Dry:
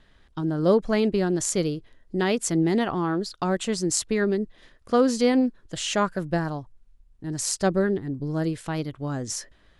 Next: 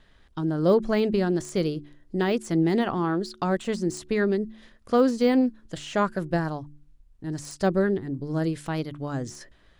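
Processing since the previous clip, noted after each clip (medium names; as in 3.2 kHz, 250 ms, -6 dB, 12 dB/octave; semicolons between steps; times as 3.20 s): de-esser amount 90%; de-hum 73.2 Hz, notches 5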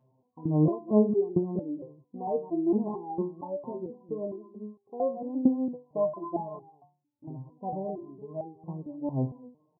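delay 217 ms -14 dB; FFT band-pass 100–1100 Hz; resonator arpeggio 4.4 Hz 130–400 Hz; trim +7 dB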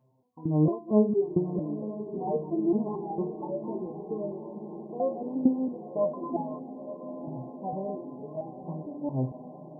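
echo that smears into a reverb 966 ms, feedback 66%, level -11.5 dB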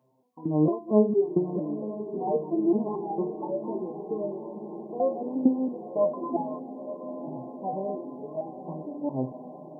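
high-pass 210 Hz 12 dB/octave; trim +3 dB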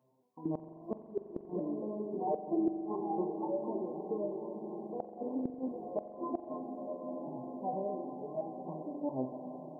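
dynamic bell 130 Hz, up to -7 dB, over -42 dBFS, Q 1.1; inverted gate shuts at -18 dBFS, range -29 dB; reverberation RT60 3.6 s, pre-delay 43 ms, DRR 8.5 dB; trim -4.5 dB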